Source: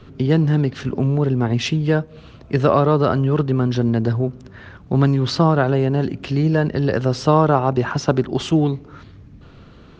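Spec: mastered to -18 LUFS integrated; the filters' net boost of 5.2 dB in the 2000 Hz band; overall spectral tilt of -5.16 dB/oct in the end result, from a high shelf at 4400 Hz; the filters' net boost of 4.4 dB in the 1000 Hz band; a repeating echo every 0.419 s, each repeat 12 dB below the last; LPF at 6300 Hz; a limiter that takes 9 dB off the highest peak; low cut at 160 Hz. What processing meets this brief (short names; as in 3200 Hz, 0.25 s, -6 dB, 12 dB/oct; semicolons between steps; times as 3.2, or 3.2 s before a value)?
HPF 160 Hz; LPF 6300 Hz; bell 1000 Hz +4 dB; bell 2000 Hz +4 dB; high shelf 4400 Hz +8 dB; limiter -8.5 dBFS; feedback echo 0.419 s, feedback 25%, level -12 dB; gain +2.5 dB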